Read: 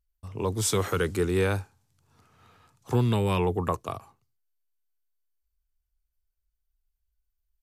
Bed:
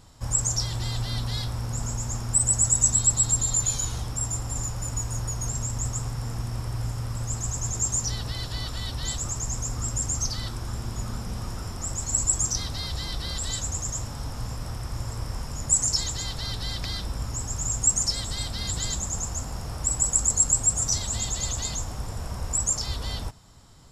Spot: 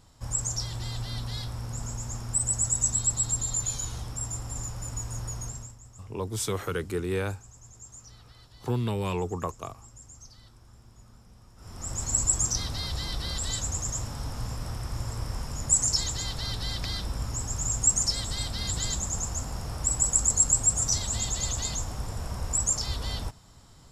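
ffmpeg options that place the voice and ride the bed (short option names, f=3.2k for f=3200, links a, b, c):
-filter_complex "[0:a]adelay=5750,volume=-4.5dB[a];[1:a]volume=15.5dB,afade=t=out:st=5.37:d=0.4:silence=0.149624,afade=t=in:st=11.56:d=0.46:silence=0.0944061[b];[a][b]amix=inputs=2:normalize=0"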